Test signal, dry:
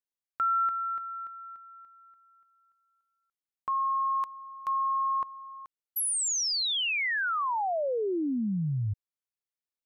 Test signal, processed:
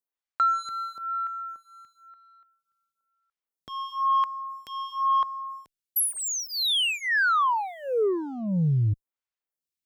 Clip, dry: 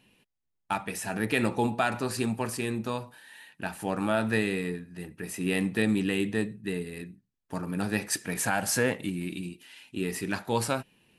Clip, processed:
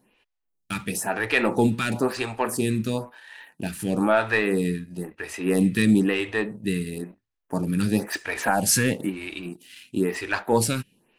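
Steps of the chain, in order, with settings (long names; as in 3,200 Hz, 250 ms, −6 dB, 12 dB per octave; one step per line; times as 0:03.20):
leveller curve on the samples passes 1
phaser with staggered stages 1 Hz
level +5.5 dB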